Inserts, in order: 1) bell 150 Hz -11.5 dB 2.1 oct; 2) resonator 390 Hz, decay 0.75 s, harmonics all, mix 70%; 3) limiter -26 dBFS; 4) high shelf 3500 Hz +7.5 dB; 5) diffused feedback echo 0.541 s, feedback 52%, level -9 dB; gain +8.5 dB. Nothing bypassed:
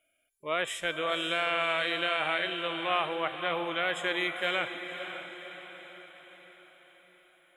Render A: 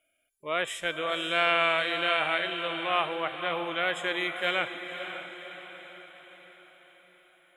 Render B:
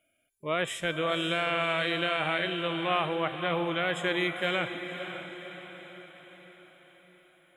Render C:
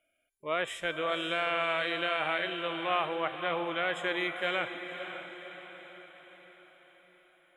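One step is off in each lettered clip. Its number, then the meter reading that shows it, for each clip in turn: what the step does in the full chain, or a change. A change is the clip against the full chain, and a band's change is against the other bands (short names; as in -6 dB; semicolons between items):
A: 3, crest factor change +3.0 dB; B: 1, momentary loudness spread change -1 LU; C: 4, 4 kHz band -3.0 dB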